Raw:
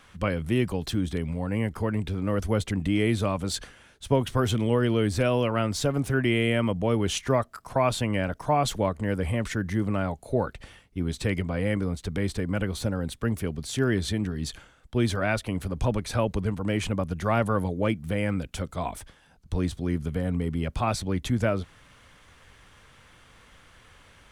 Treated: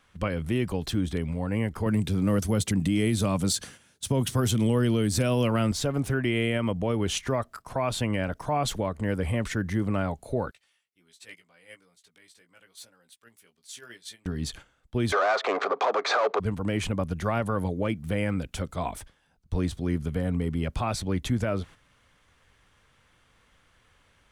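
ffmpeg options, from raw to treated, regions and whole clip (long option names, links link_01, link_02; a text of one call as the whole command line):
ffmpeg -i in.wav -filter_complex "[0:a]asettb=1/sr,asplit=3[link_01][link_02][link_03];[link_01]atrim=end=1.864[link_04];[link_02]atrim=start=1.86:end=5.72,asetpts=PTS-STARTPTS,afade=type=in:duration=0.004:curve=qsin,afade=type=out:start_time=3.856:duration=0.004:curve=qsin,highpass=140,bass=frequency=250:gain=10,treble=frequency=4000:gain=11[link_05];[link_03]atrim=start=5.716[link_06];[link_04][link_05]acrossfade=duration=0.004:curve1=hsin:curve2=qsin[link_07];[link_07][link_06]acrossfade=duration=0.004:curve1=qsin:curve2=hsin,asettb=1/sr,asplit=3[link_08][link_09][link_10];[link_08]atrim=end=10.514[link_11];[link_09]atrim=start=10.51:end=14.26,asetpts=PTS-STARTPTS,afade=type=in:duration=0.004:curve=qsin,afade=type=out:start_time=3.746:duration=0.004:curve=qsin,lowpass=frequency=3500:poles=1,aderivative,asplit=2[link_12][link_13];[link_13]adelay=17,volume=-5dB[link_14];[link_12][link_14]amix=inputs=2:normalize=0,atrim=end_sample=165375[link_15];[link_10]atrim=start=14.256[link_16];[link_11][link_15]acrossfade=duration=0.004:curve1=hsin:curve2=qsin[link_17];[link_17][link_16]acrossfade=duration=0.004:curve1=qsin:curve2=hsin,asettb=1/sr,asplit=3[link_18][link_19][link_20];[link_18]atrim=end=15.124[link_21];[link_19]atrim=start=15.12:end=16.4,asetpts=PTS-STARTPTS,afade=type=in:duration=0.004:curve=qsin,afade=type=out:start_time=1.276:duration=0.004:curve=qsin,asplit=2[link_22][link_23];[link_23]highpass=frequency=720:poles=1,volume=25dB,asoftclip=type=tanh:threshold=-11dB[link_24];[link_22][link_24]amix=inputs=2:normalize=0,lowpass=frequency=3300:poles=1,volume=-6dB,adynamicsmooth=sensitivity=5.5:basefreq=1900,highpass=frequency=380:width=0.5412,highpass=frequency=380:width=1.3066,equalizer=frequency=420:width_type=q:width=4:gain=7,equalizer=frequency=720:width_type=q:width=4:gain=7,equalizer=frequency=1200:width_type=q:width=4:gain=10,equalizer=frequency=2900:width_type=q:width=4:gain=-6,equalizer=frequency=5300:width_type=q:width=4:gain=-4,lowpass=frequency=6100:width=0.5412,lowpass=frequency=6100:width=1.3066[link_25];[link_20]atrim=start=16.396[link_26];[link_21][link_25]acrossfade=duration=0.004:curve1=hsin:curve2=qsin[link_27];[link_27][link_26]acrossfade=duration=0.004:curve1=qsin:curve2=hsin,agate=range=-9dB:threshold=-44dB:ratio=16:detection=peak,alimiter=limit=-16dB:level=0:latency=1:release=106" out.wav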